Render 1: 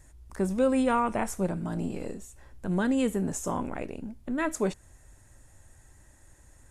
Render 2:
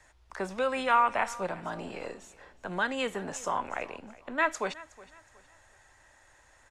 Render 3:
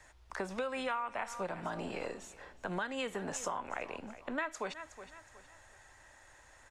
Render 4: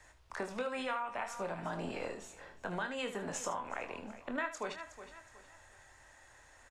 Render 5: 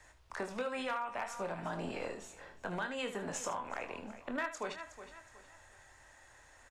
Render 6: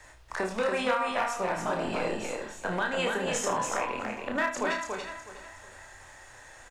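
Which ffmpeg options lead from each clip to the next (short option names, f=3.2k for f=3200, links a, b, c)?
-filter_complex "[0:a]acrossover=split=560 5400:gain=0.112 1 0.1[a][b][c];[a][b][c]amix=inputs=3:normalize=0,acrossover=split=170|880[d][e][f];[e]alimiter=level_in=7.5dB:limit=-24dB:level=0:latency=1:release=478,volume=-7.5dB[g];[d][g][f]amix=inputs=3:normalize=0,aecho=1:1:367|734|1101:0.1|0.033|0.0109,volume=6.5dB"
-af "acompressor=threshold=-35dB:ratio=6,volume=1dB"
-af "aecho=1:1:24|76:0.422|0.266,volume=-1.5dB"
-af "volume=29dB,asoftclip=hard,volume=-29dB"
-filter_complex "[0:a]bandreject=f=50:t=h:w=6,bandreject=f=100:t=h:w=6,bandreject=f=150:t=h:w=6,bandreject=f=200:t=h:w=6,bandreject=f=250:t=h:w=6,asplit=2[a][b];[b]adelay=32,volume=-5.5dB[c];[a][c]amix=inputs=2:normalize=0,aecho=1:1:284:0.631,volume=7.5dB"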